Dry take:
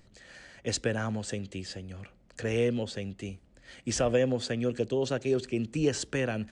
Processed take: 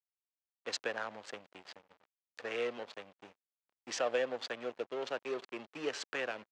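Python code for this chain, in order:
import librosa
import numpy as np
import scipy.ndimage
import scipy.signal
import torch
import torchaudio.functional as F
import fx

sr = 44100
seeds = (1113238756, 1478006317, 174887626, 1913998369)

y = fx.backlash(x, sr, play_db=-31.5)
y = fx.bandpass_edges(y, sr, low_hz=690.0, high_hz=4600.0)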